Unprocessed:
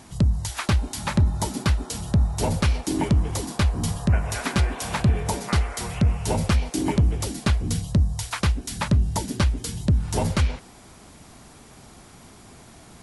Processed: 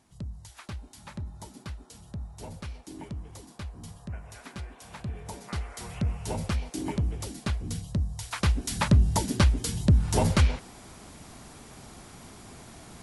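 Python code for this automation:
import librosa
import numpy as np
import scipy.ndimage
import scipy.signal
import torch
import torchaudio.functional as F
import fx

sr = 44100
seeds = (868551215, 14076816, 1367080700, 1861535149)

y = fx.gain(x, sr, db=fx.line((4.85, -18.0), (5.96, -8.5), (8.17, -8.5), (8.61, 0.0)))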